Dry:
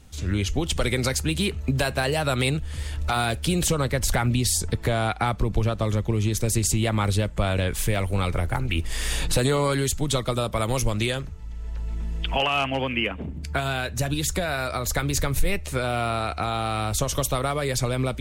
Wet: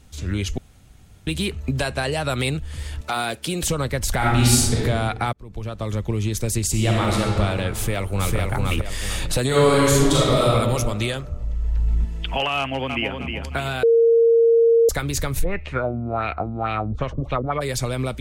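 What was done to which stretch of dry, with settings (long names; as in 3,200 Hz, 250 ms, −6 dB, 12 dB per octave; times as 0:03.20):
0:00.58–0:01.27: fill with room tone
0:01.79–0:02.30: low-pass filter 11,000 Hz 24 dB per octave
0:03.01–0:03.63: high-pass filter 200 Hz
0:04.17–0:04.78: thrown reverb, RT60 1.3 s, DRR −6.5 dB
0:05.33–0:06.04: fade in
0:06.70–0:07.20: thrown reverb, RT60 2.7 s, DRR −3 dB
0:07.74–0:08.36: delay throw 450 ms, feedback 35%, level −1.5 dB
0:09.47–0:10.51: thrown reverb, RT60 1.7 s, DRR −7 dB
0:11.29–0:12.05: low-shelf EQ 180 Hz +11 dB
0:12.58–0:13.17: delay throw 310 ms, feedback 40%, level −6 dB
0:13.83–0:14.89: beep over 461 Hz −11.5 dBFS
0:15.43–0:17.60: auto-filter low-pass sine 1.1 Hz → 4.9 Hz 220–2,600 Hz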